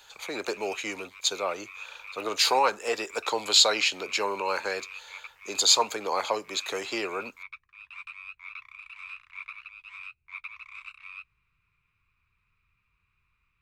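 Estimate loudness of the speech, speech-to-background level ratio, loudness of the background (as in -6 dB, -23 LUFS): -26.0 LUFS, 16.5 dB, -42.5 LUFS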